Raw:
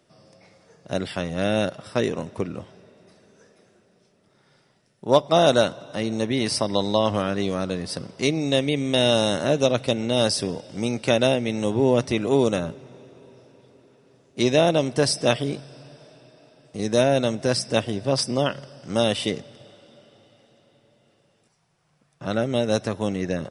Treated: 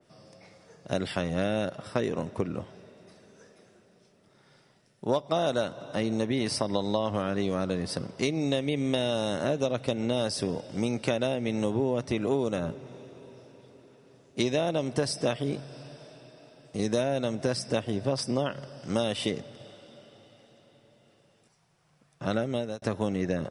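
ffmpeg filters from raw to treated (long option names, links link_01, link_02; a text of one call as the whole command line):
ffmpeg -i in.wav -filter_complex "[0:a]asplit=2[link_01][link_02];[link_01]atrim=end=22.82,asetpts=PTS-STARTPTS,afade=type=out:start_time=22.36:duration=0.46[link_03];[link_02]atrim=start=22.82,asetpts=PTS-STARTPTS,afade=type=in:duration=0.004:curve=hsin[link_04];[link_03][link_04]concat=n=2:v=0:a=1,acompressor=threshold=-23dB:ratio=6,adynamicequalizer=threshold=0.00355:dfrequency=2200:dqfactor=0.7:tfrequency=2200:tqfactor=0.7:attack=5:release=100:ratio=0.375:range=2:mode=cutabove:tftype=highshelf" out.wav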